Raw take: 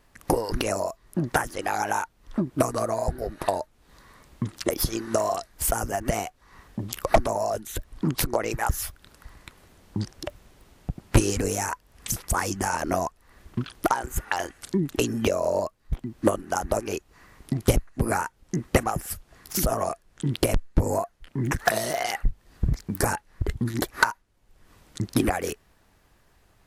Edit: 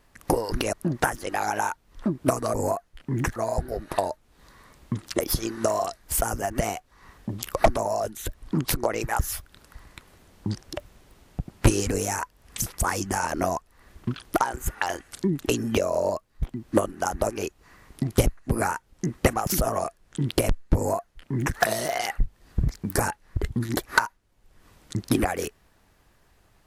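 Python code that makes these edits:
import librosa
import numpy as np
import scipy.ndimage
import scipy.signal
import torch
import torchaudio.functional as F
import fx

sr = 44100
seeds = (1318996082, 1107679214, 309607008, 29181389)

y = fx.edit(x, sr, fx.cut(start_s=0.73, length_s=0.32),
    fx.cut(start_s=18.97, length_s=0.55),
    fx.duplicate(start_s=20.81, length_s=0.82, to_s=2.86), tone=tone)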